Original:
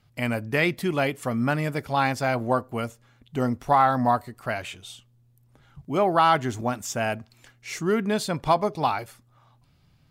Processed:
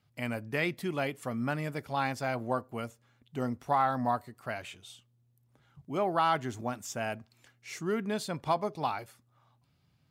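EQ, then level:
high-pass filter 78 Hz
−8.0 dB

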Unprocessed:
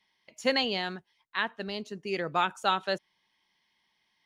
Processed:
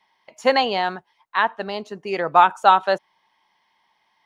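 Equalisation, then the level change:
parametric band 870 Hz +14.5 dB 1.7 octaves
+1.5 dB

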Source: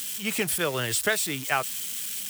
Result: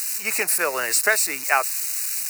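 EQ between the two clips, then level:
high-pass filter 580 Hz 12 dB per octave
Butterworth band-reject 3,300 Hz, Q 2.2
+7.0 dB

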